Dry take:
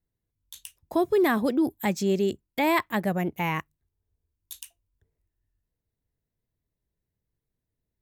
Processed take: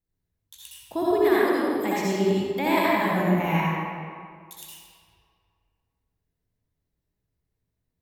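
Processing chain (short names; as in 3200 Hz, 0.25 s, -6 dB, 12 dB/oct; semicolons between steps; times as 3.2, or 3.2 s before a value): 1.27–2.02 HPF 790 Hz -> 190 Hz 6 dB/oct; reverb RT60 2.1 s, pre-delay 58 ms, DRR -8 dB; gain -5 dB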